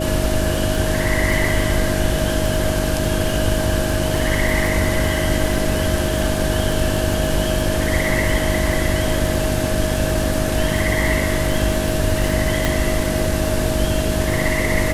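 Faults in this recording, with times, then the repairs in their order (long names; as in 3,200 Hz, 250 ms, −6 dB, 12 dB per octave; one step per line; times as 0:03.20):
surface crackle 31 per second −22 dBFS
mains hum 50 Hz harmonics 7 −24 dBFS
whistle 630 Hz −24 dBFS
0:12.65: click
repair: click removal
notch filter 630 Hz, Q 30
hum removal 50 Hz, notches 7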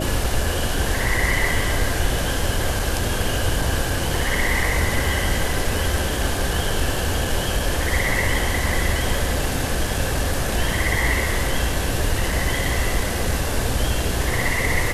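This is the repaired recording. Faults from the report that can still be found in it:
none of them is left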